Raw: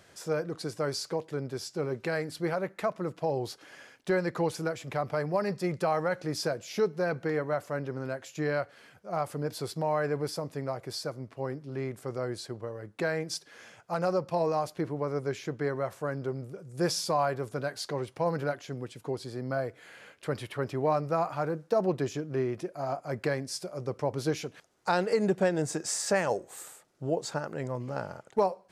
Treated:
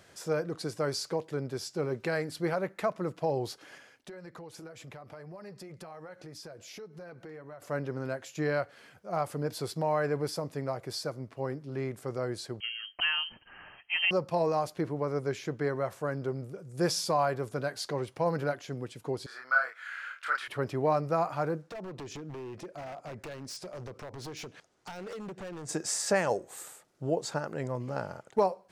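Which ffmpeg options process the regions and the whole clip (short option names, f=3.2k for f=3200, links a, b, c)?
-filter_complex "[0:a]asettb=1/sr,asplit=3[a][b][c];[a]atrim=end=3.784[d];[b]atrim=start=3.78:end=7.62,asetpts=PTS-STARTPTS,afade=t=in:d=0.004:c=qsin,afade=t=out:st=3.836:d=0.004:c=qsin,flanger=delay=0.5:depth=3.1:regen=-66:speed=1.9:shape=triangular,acompressor=threshold=-43dB:ratio=6:attack=3.2:release=140:knee=1:detection=peak[e];[c]atrim=start=7.616[f];[d][e]acrossfade=d=0.004:c1=hsin:c2=qsin[g];[g][f]acrossfade=d=0.004:c1=qsin:c2=hsin,asettb=1/sr,asplit=3[h][i][j];[h]atrim=end=12.604[k];[i]atrim=start=12.6:end=14.11,asetpts=PTS-STARTPTS,afade=t=in:d=0.004:c=qsin,afade=t=out:st=1.506:d=0.004:c=qsin,lowpass=f=2.8k:t=q:w=0.5098,lowpass=f=2.8k:t=q:w=0.6013,lowpass=f=2.8k:t=q:w=0.9,lowpass=f=2.8k:t=q:w=2.563,afreqshift=-3300,lowshelf=f=480:g=11[l];[j]atrim=start=14.106[m];[k][l]acrossfade=d=0.004:c1=hsin:c2=qsin[n];[n][m]acrossfade=d=0.004:c1=qsin:c2=hsin,asettb=1/sr,asplit=3[o][p][q];[o]atrim=end=19.264[r];[p]atrim=start=19.26:end=20.48,asetpts=PTS-STARTPTS,afade=t=in:d=0.004:c=qsin,afade=t=out:st=1.216:d=0.004:c=qsin,highpass=f=1.4k:t=q:w=5.5,equalizer=f=11k:t=o:w=1.1:g=-7,asplit=2[s][t];[t]adelay=31,volume=-2dB[u];[s][u]amix=inputs=2:normalize=0,atrim=end_sample=53802[v];[q]atrim=start=20.476[w];[r][v]acrossfade=d=0.004:c1=hsin:c2=qsin[x];[x][w]acrossfade=d=0.004:c1=qsin:c2=hsin,asettb=1/sr,asplit=3[y][z][aa];[y]atrim=end=21.624[ab];[z]atrim=start=21.62:end=25.69,asetpts=PTS-STARTPTS,afade=t=in:d=0.004:c=qsin,afade=t=out:st=4.066:d=0.004:c=qsin,lowpass=8.4k,acompressor=threshold=-35dB:ratio=8:attack=3.2:release=140:knee=1:detection=peak,aeval=exprs='0.0168*(abs(mod(val(0)/0.0168+3,4)-2)-1)':c=same[ac];[aa]atrim=start=25.686[ad];[ab][ac]acrossfade=d=0.004:c1=hsin:c2=qsin[ae];[ae][ad]acrossfade=d=0.004:c1=qsin:c2=hsin"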